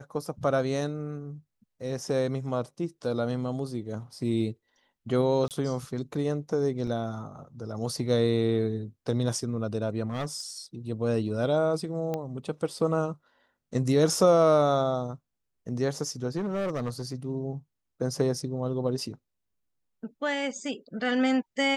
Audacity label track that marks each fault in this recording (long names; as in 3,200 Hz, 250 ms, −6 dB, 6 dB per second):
5.480000	5.510000	drop-out 28 ms
6.870000	6.870000	drop-out 3.7 ms
10.060000	10.400000	clipping −26.5 dBFS
12.140000	12.140000	click −18 dBFS
16.370000	17.020000	clipping −26.5 dBFS